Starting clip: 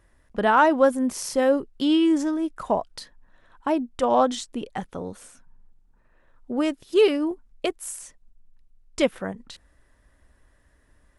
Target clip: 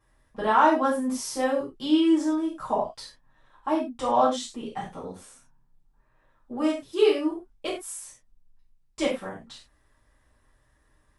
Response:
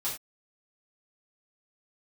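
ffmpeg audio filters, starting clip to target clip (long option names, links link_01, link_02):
-filter_complex "[1:a]atrim=start_sample=2205,asetrate=43659,aresample=44100[link_01];[0:a][link_01]afir=irnorm=-1:irlink=0,volume=-6.5dB"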